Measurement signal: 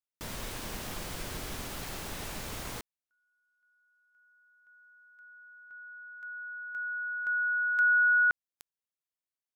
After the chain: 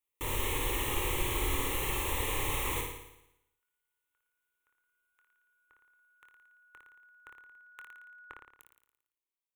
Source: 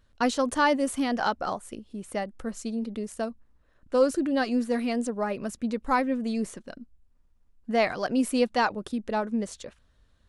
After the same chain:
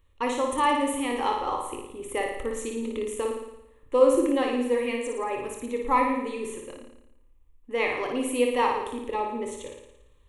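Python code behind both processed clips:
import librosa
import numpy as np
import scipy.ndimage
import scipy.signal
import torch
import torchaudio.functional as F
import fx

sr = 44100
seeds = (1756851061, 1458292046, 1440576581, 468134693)

p1 = fx.rider(x, sr, range_db=5, speed_s=2.0)
p2 = fx.fixed_phaser(p1, sr, hz=1000.0, stages=8)
p3 = fx.doubler(p2, sr, ms=25.0, db=-10.0)
p4 = p3 + fx.room_flutter(p3, sr, wall_m=9.7, rt60_s=0.84, dry=0)
y = p4 * librosa.db_to_amplitude(2.0)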